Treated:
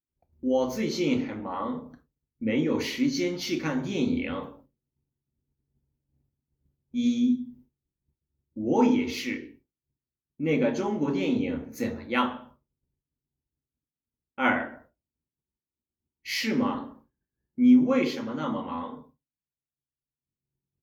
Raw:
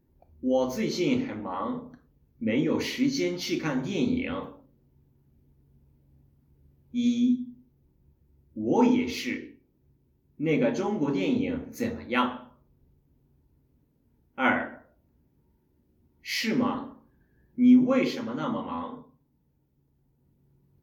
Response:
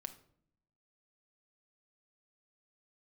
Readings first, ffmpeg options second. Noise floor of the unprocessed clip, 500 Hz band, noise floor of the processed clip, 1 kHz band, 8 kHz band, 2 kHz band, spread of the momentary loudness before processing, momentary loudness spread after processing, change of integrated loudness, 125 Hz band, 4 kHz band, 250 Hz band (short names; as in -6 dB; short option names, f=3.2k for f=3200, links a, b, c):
-69 dBFS, 0.0 dB, under -85 dBFS, 0.0 dB, n/a, 0.0 dB, 13 LU, 13 LU, 0.0 dB, 0.0 dB, 0.0 dB, 0.0 dB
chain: -af "agate=range=-33dB:threshold=-49dB:ratio=3:detection=peak"